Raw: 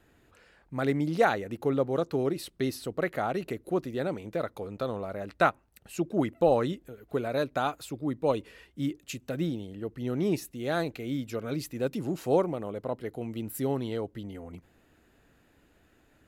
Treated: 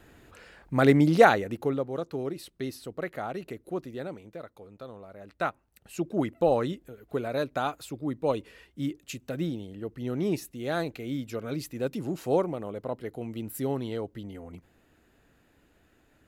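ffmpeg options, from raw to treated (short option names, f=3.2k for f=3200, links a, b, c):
-af "volume=18.5dB,afade=t=out:st=1.04:d=0.8:silence=0.237137,afade=t=out:st=3.92:d=0.51:silence=0.473151,afade=t=in:st=5.14:d=0.92:silence=0.298538"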